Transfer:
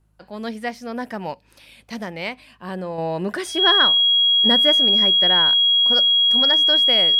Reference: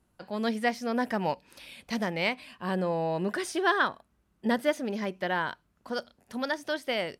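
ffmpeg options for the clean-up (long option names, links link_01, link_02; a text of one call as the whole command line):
ffmpeg -i in.wav -af "bandreject=frequency=52.5:width_type=h:width=4,bandreject=frequency=105:width_type=h:width=4,bandreject=frequency=157.5:width_type=h:width=4,bandreject=frequency=3300:width=30,asetnsamples=nb_out_samples=441:pad=0,asendcmd='2.98 volume volume -5dB',volume=0dB" out.wav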